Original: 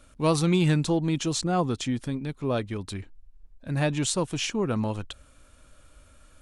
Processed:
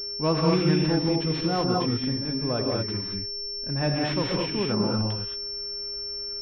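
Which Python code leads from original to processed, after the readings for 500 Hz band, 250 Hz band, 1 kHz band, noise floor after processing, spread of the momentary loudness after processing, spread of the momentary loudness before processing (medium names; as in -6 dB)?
+2.0 dB, +1.5 dB, +1.5 dB, -34 dBFS, 8 LU, 14 LU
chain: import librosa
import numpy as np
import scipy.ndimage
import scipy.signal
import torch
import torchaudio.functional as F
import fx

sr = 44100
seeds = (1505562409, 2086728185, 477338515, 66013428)

y = fx.rev_gated(x, sr, seeds[0], gate_ms=250, shape='rising', drr_db=-1.0)
y = y + 10.0 ** (-42.0 / 20.0) * np.sin(2.0 * np.pi * 410.0 * np.arange(len(y)) / sr)
y = fx.pwm(y, sr, carrier_hz=5400.0)
y = y * librosa.db_to_amplitude(-2.0)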